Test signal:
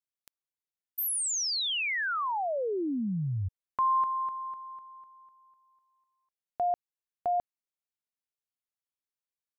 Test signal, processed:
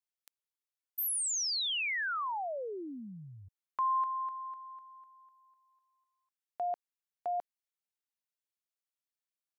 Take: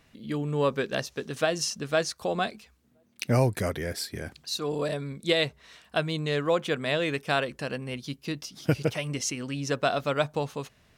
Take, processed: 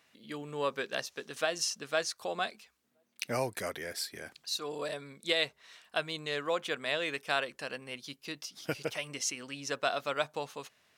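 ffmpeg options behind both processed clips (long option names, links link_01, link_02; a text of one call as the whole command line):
ffmpeg -i in.wav -af "highpass=frequency=760:poles=1,volume=-2.5dB" out.wav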